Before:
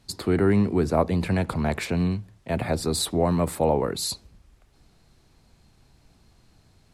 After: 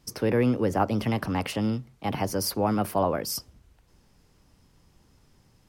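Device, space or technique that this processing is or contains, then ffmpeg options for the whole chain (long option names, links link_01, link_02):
nightcore: -af "asetrate=53802,aresample=44100,volume=-2.5dB"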